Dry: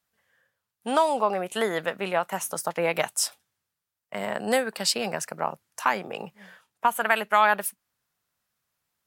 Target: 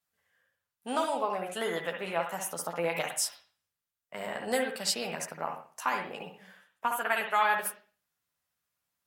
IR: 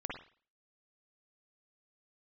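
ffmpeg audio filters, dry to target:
-filter_complex "[0:a]asplit=2[s0][s1];[1:a]atrim=start_sample=2205,highshelf=f=2600:g=10.5,adelay=12[s2];[s1][s2]afir=irnorm=-1:irlink=0,volume=0.596[s3];[s0][s3]amix=inputs=2:normalize=0,volume=0.398"

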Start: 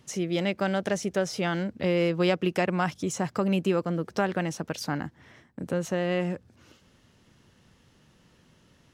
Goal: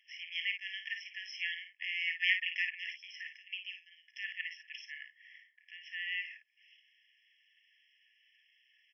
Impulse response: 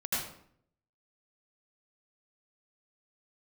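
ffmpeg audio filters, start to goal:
-filter_complex "[0:a]bandreject=f=400:w=12,asettb=1/sr,asplit=3[s0][s1][s2];[s0]atrim=end=0.584[s3];[s1]atrim=start=0.58:end=1.54,asetpts=PTS-STARTPTS,afade=t=in:d=0.004:c=qsin,afade=t=out:st=0.956:d=0.004:c=qsin,acrusher=bits=6:mix=0:aa=0.5[s4];[s2]atrim=start=1.536[s5];[s3][s4]acrossfade=d=0.004:c1=hsin:c2=qsin[s6];[s6][s5]acrossfade=d=0.004:c1=qsin:c2=hsin,asettb=1/sr,asplit=3[s7][s8][s9];[s7]atrim=end=2.074[s10];[s8]atrim=start=2.07:end=2.53,asetpts=PTS-STARTPTS,afade=t=in:d=0.004:c=qsin,afade=t=out:st=0.456:d=0.004:c=qsin,equalizer=f=1800:t=o:w=0.45:g=13[s11];[s9]atrim=start=2.526[s12];[s10][s11]acrossfade=d=0.004:c1=hsin:c2=qsin[s13];[s13][s12]acrossfade=d=0.004:c1=qsin:c2=hsin,asettb=1/sr,asplit=3[s14][s15][s16];[s14]atrim=end=3.374[s17];[s15]atrim=start=3.37:end=4.15,asetpts=PTS-STARTPTS,afade=t=in:d=0.004:c=qsin,afade=t=out:st=0.776:d=0.004:c=qsin,acrossover=split=240|3000[s18][s19][s20];[s19]acompressor=threshold=0.0141:ratio=6[s21];[s18][s21][s20]amix=inputs=3:normalize=0[s22];[s16]atrim=start=4.146[s23];[s17][s22]acrossfade=d=0.004:c1=hsin:c2=qsin[s24];[s24][s23]acrossfade=d=0.004:c1=qsin:c2=hsin,asplit=2[s25][s26];[s26]aecho=0:1:36|54:0.211|0.398[s27];[s25][s27]amix=inputs=2:normalize=0,aresample=11025,aresample=44100,afftfilt=real='re*eq(mod(floor(b*sr/1024/1700),2),1)':imag='im*eq(mod(floor(b*sr/1024/1700),2),1)':win_size=1024:overlap=0.75"

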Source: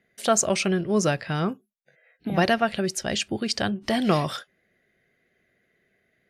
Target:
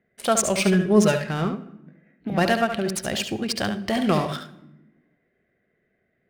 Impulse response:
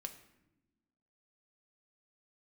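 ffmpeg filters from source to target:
-filter_complex "[0:a]asettb=1/sr,asplit=3[s0][s1][s2];[s0]atrim=end=0.584[s3];[s1]atrim=start=0.58:end=1.27,asetpts=PTS-STARTPTS,afade=t=in:d=0.004:c=qsin,afade=t=out:st=0.686:d=0.004:c=qsin,aecho=1:1:4.8:0.82,atrim=end_sample=30429[s4];[s2]atrim=start=1.266[s5];[s3][s4]acrossfade=d=0.004:c1=hsin:c2=qsin[s6];[s6][s5]acrossfade=d=0.004:c1=qsin:c2=hsin,aexciter=amount=2.9:drive=8.5:freq=8800,adynamicsmooth=sensitivity=6:basefreq=2000,asplit=2[s7][s8];[1:a]atrim=start_sample=2205,adelay=71[s9];[s8][s9]afir=irnorm=-1:irlink=0,volume=0.631[s10];[s7][s10]amix=inputs=2:normalize=0"

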